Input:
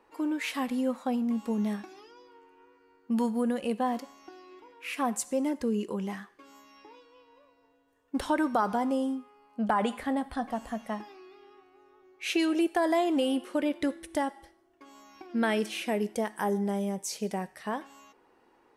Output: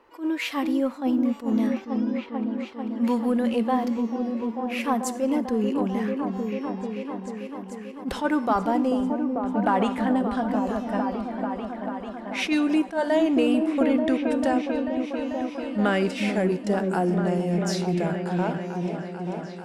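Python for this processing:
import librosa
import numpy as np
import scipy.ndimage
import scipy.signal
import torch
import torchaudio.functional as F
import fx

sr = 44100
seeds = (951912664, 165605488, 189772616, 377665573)

p1 = fx.speed_glide(x, sr, from_pct=105, to_pct=86)
p2 = fx.peak_eq(p1, sr, hz=9300.0, db=-7.5, octaves=0.92)
p3 = fx.echo_opening(p2, sr, ms=442, hz=400, octaves=1, feedback_pct=70, wet_db=-3)
p4 = 10.0 ** (-27.0 / 20.0) * np.tanh(p3 / 10.0 ** (-27.0 / 20.0))
p5 = p3 + (p4 * 10.0 ** (-10.5 / 20.0))
p6 = fx.attack_slew(p5, sr, db_per_s=230.0)
y = p6 * 10.0 ** (3.0 / 20.0)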